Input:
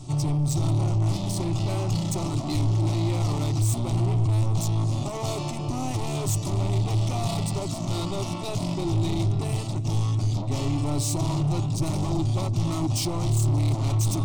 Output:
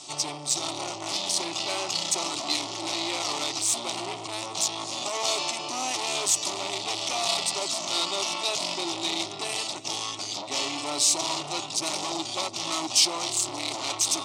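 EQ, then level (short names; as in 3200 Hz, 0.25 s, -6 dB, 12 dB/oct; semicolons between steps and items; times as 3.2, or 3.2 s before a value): BPF 340–5000 Hz; tilt +4.5 dB/oct; +4.0 dB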